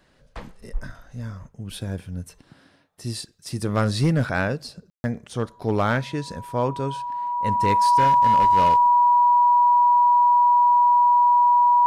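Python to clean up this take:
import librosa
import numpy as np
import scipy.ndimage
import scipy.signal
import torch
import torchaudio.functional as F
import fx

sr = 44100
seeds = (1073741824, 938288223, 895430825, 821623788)

y = fx.fix_declip(x, sr, threshold_db=-13.0)
y = fx.notch(y, sr, hz=970.0, q=30.0)
y = fx.fix_ambience(y, sr, seeds[0], print_start_s=2.48, print_end_s=2.98, start_s=4.9, end_s=5.04)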